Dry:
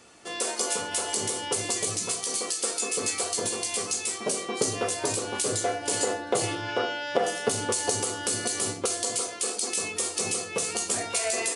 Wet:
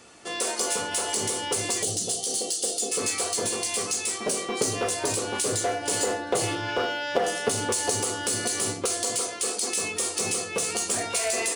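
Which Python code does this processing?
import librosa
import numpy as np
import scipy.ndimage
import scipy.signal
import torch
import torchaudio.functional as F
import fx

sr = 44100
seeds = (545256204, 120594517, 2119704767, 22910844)

p1 = fx.spec_box(x, sr, start_s=1.83, length_s=1.09, low_hz=830.0, high_hz=2700.0, gain_db=-18)
p2 = 10.0 ** (-27.0 / 20.0) * (np.abs((p1 / 10.0 ** (-27.0 / 20.0) + 3.0) % 4.0 - 2.0) - 1.0)
y = p1 + (p2 * librosa.db_to_amplitude(-9.0))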